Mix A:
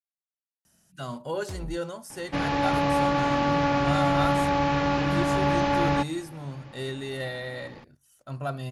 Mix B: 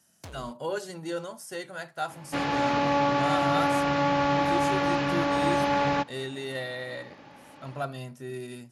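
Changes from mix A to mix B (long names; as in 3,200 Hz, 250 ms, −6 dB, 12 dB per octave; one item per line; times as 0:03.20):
speech: entry −0.65 s
first sound: entry −1.25 s
master: add high-pass filter 200 Hz 6 dB per octave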